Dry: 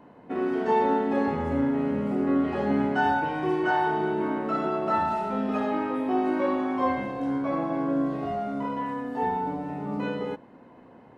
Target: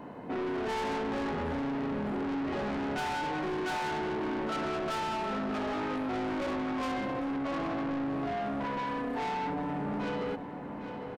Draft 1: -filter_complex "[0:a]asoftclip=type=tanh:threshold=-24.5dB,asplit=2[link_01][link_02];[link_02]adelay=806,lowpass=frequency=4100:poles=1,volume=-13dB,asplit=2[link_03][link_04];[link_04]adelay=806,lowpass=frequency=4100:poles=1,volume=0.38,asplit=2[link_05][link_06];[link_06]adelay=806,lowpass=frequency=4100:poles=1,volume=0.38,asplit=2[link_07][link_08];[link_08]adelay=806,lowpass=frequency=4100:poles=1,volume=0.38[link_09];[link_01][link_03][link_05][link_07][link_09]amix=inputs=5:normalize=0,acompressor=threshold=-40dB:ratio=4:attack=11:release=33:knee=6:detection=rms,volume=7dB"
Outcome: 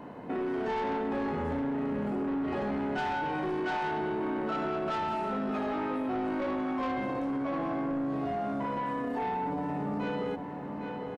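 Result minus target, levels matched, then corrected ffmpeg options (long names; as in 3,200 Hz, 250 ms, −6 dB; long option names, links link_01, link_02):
soft clipping: distortion −6 dB
-filter_complex "[0:a]asoftclip=type=tanh:threshold=-33.5dB,asplit=2[link_01][link_02];[link_02]adelay=806,lowpass=frequency=4100:poles=1,volume=-13dB,asplit=2[link_03][link_04];[link_04]adelay=806,lowpass=frequency=4100:poles=1,volume=0.38,asplit=2[link_05][link_06];[link_06]adelay=806,lowpass=frequency=4100:poles=1,volume=0.38,asplit=2[link_07][link_08];[link_08]adelay=806,lowpass=frequency=4100:poles=1,volume=0.38[link_09];[link_01][link_03][link_05][link_07][link_09]amix=inputs=5:normalize=0,acompressor=threshold=-40dB:ratio=4:attack=11:release=33:knee=6:detection=rms,volume=7dB"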